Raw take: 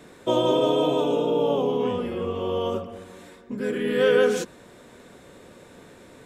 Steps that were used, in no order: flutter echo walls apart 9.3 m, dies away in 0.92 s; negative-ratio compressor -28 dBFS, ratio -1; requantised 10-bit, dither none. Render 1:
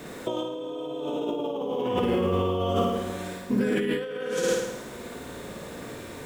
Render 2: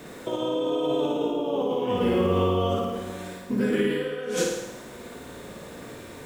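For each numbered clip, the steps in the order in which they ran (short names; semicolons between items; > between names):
requantised > flutter echo > negative-ratio compressor; requantised > negative-ratio compressor > flutter echo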